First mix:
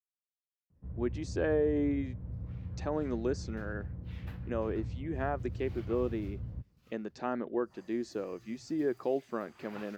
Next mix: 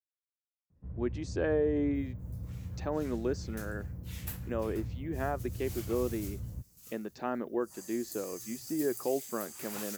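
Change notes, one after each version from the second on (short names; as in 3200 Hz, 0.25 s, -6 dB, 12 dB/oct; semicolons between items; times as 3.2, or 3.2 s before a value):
second sound: remove air absorption 350 m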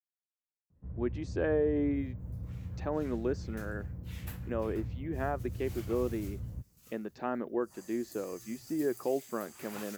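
master: add tone controls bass 0 dB, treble -8 dB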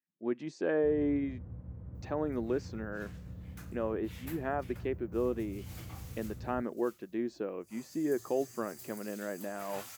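speech: entry -0.75 s; first sound: add low shelf 140 Hz -7.5 dB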